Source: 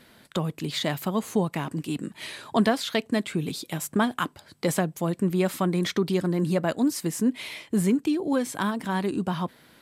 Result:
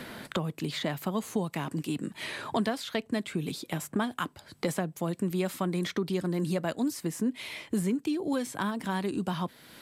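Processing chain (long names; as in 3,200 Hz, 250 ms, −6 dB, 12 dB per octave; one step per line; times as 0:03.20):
multiband upward and downward compressor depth 70%
level −5.5 dB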